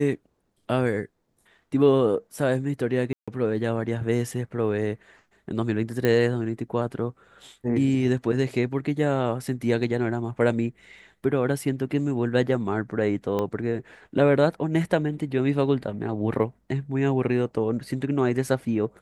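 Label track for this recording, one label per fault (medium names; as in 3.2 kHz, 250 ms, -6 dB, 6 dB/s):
3.130000	3.280000	dropout 146 ms
6.050000	6.050000	pop -11 dBFS
13.390000	13.390000	pop -15 dBFS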